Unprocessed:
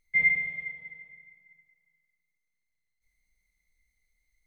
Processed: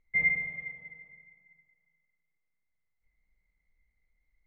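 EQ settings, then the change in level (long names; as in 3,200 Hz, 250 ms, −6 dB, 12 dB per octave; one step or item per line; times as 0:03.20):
low-pass filter 1,700 Hz 12 dB per octave
+2.0 dB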